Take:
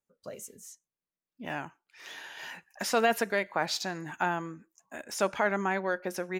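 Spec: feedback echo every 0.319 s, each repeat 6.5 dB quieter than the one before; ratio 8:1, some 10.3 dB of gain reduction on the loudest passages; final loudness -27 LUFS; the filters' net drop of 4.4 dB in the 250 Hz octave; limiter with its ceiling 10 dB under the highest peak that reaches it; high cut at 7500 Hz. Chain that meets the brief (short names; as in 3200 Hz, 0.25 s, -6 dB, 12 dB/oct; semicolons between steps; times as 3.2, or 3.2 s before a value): LPF 7500 Hz; bell 250 Hz -6.5 dB; compressor 8:1, threshold -32 dBFS; limiter -28.5 dBFS; feedback echo 0.319 s, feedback 47%, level -6.5 dB; gain +13.5 dB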